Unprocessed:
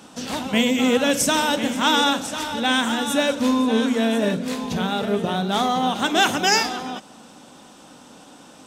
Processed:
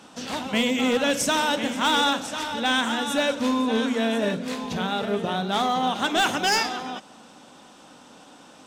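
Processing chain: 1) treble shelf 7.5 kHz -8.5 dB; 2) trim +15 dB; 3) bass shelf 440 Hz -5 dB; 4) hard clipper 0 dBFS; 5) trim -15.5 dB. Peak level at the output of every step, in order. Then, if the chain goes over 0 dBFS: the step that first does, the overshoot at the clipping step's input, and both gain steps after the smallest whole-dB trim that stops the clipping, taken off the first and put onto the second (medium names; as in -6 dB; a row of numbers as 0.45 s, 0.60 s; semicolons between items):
-5.0 dBFS, +10.0 dBFS, +9.0 dBFS, 0.0 dBFS, -15.5 dBFS; step 2, 9.0 dB; step 2 +6 dB, step 5 -6.5 dB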